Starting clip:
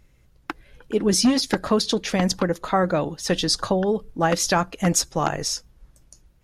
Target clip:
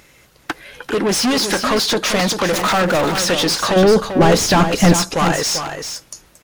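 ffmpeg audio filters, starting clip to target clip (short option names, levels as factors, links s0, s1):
-filter_complex "[0:a]asettb=1/sr,asplit=3[s0][s1][s2];[s0]atrim=end=2.524[s3];[s1]atrim=start=2.52:end=3.25,asetpts=PTS-STARTPTS,afade=t=in:d=0.004:c=qsin,afade=t=out:st=0.726:d=0.004:c=qsin,aeval=exprs='val(0)+0.5*0.0562*sgn(val(0))':c=same[s4];[s2]atrim=start=3.246[s5];[s3][s4]acrossfade=d=0.004:c1=hsin:c2=qsin[s6];[s6][s5]acrossfade=d=0.004:c1=qsin:c2=hsin,crystalizer=i=1:c=0,asplit=2[s7][s8];[s8]highpass=f=720:p=1,volume=39.8,asoftclip=type=tanh:threshold=0.75[s9];[s7][s9]amix=inputs=2:normalize=0,lowpass=f=4700:p=1,volume=0.501,asettb=1/sr,asplit=3[s10][s11][s12];[s10]atrim=end=3.764[s13];[s11]atrim=start=3.76:end=4.96,asetpts=PTS-STARTPTS,afade=t=in:d=0.004:c=qsin,afade=t=out:st=1.196:d=0.004:c=qsin,lowshelf=f=420:g=11.5[s14];[s12]atrim=start=4.956[s15];[s13][s14]acrossfade=d=0.004:c1=hsin:c2=qsin[s16];[s16][s15]acrossfade=d=0.004:c1=qsin:c2=hsin,asplit=2[s17][s18];[s18]aecho=0:1:392:0.398[s19];[s17][s19]amix=inputs=2:normalize=0,volume=0.473"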